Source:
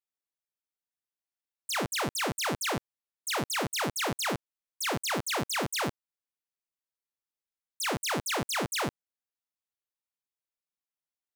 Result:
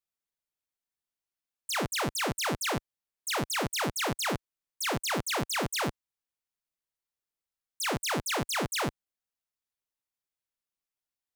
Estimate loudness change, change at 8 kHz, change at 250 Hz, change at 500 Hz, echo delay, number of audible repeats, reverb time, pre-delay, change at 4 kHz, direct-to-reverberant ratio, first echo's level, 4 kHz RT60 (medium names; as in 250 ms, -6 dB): 0.0 dB, 0.0 dB, +0.5 dB, 0.0 dB, no echo, no echo, no reverb, no reverb, 0.0 dB, no reverb, no echo, no reverb